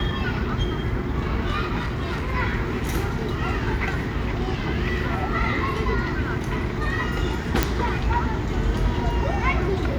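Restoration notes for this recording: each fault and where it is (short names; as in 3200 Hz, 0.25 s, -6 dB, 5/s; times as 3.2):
1.78–2.34 clipped -22.5 dBFS
7.63 pop -3 dBFS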